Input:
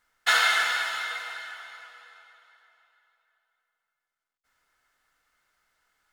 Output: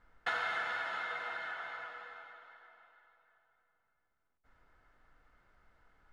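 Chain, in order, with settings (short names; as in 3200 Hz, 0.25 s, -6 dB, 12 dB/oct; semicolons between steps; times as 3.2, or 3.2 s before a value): LPF 1400 Hz 6 dB/oct; tilt -2.5 dB/oct; compressor 3:1, threshold -45 dBFS, peak gain reduction 16 dB; gain +7 dB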